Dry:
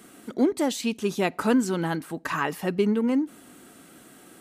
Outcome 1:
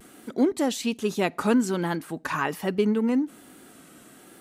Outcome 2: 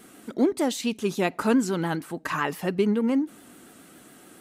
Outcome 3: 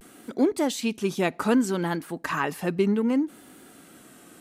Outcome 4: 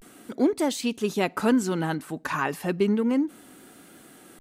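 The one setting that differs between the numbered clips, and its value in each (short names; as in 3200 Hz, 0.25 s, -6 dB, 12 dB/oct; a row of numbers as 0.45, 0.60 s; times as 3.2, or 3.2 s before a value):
vibrato, rate: 1.2, 7.1, 0.64, 0.33 Hz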